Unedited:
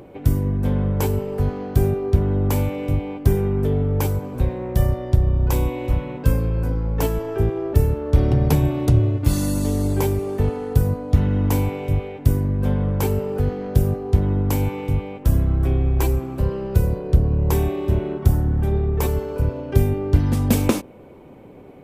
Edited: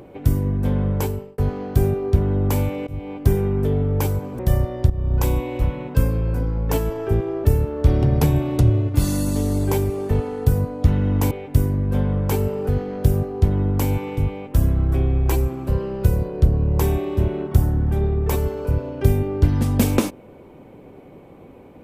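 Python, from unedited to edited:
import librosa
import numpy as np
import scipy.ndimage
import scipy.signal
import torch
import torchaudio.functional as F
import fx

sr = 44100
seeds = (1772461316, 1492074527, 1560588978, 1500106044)

y = fx.edit(x, sr, fx.fade_out_span(start_s=0.95, length_s=0.43),
    fx.fade_in_from(start_s=2.87, length_s=0.42, curve='qsin', floor_db=-21.0),
    fx.cut(start_s=4.39, length_s=0.29),
    fx.fade_in_from(start_s=5.19, length_s=0.25, floor_db=-13.0),
    fx.cut(start_s=11.6, length_s=0.42), tone=tone)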